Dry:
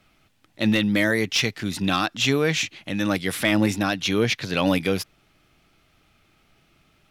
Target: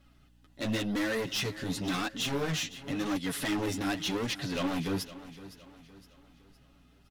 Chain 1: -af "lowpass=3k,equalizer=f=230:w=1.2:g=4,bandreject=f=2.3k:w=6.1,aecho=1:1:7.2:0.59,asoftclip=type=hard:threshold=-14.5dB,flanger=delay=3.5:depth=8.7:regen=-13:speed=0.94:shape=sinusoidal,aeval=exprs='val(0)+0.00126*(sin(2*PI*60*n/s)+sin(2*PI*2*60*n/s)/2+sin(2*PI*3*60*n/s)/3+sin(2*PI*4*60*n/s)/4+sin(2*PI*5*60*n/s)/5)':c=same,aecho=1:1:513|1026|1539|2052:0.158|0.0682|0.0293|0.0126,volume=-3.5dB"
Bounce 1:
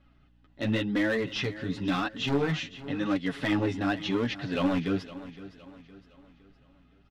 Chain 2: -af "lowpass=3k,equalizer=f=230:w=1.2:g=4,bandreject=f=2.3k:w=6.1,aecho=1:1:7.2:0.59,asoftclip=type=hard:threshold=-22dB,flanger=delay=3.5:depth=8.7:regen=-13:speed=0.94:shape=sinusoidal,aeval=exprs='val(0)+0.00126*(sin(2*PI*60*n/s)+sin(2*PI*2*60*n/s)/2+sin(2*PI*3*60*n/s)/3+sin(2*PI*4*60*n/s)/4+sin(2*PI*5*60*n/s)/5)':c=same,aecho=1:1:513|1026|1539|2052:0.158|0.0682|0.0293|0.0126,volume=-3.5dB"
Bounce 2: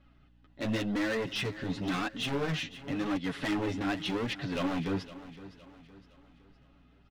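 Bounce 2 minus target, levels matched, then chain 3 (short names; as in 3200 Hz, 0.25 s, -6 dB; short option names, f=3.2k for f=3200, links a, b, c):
4000 Hz band -2.5 dB
-af "equalizer=f=230:w=1.2:g=4,bandreject=f=2.3k:w=6.1,aecho=1:1:7.2:0.59,asoftclip=type=hard:threshold=-22dB,flanger=delay=3.5:depth=8.7:regen=-13:speed=0.94:shape=sinusoidal,aeval=exprs='val(0)+0.00126*(sin(2*PI*60*n/s)+sin(2*PI*2*60*n/s)/2+sin(2*PI*3*60*n/s)/3+sin(2*PI*4*60*n/s)/4+sin(2*PI*5*60*n/s)/5)':c=same,aecho=1:1:513|1026|1539|2052:0.158|0.0682|0.0293|0.0126,volume=-3.5dB"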